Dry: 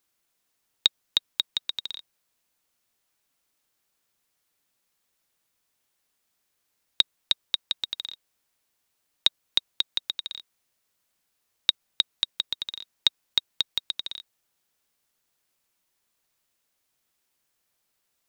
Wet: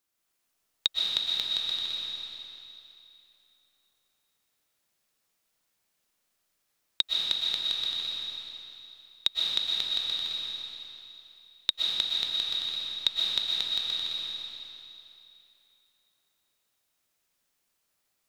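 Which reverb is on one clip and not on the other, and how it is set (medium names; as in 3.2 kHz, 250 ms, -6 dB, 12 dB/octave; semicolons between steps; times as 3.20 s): algorithmic reverb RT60 2.9 s, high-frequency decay 0.95×, pre-delay 85 ms, DRR -4 dB; trim -5.5 dB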